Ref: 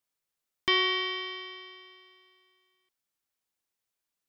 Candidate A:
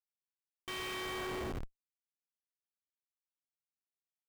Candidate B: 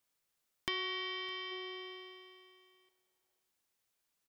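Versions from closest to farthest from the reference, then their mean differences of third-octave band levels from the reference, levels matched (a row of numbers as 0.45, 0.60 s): B, A; 4.5, 16.0 dB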